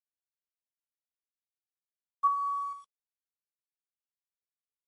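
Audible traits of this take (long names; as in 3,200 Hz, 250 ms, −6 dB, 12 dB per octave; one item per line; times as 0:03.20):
a quantiser's noise floor 10 bits, dither none
tremolo saw up 2.2 Hz, depth 40%
MP3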